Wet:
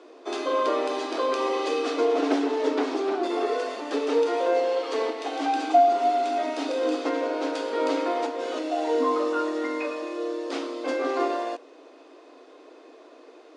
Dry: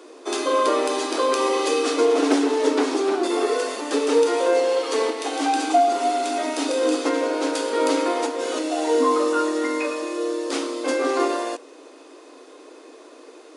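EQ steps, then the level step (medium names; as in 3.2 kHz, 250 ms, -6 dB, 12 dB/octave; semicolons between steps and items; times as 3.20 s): low-pass 4.5 kHz 12 dB/octave; peaking EQ 680 Hz +5.5 dB 0.28 oct; -5.0 dB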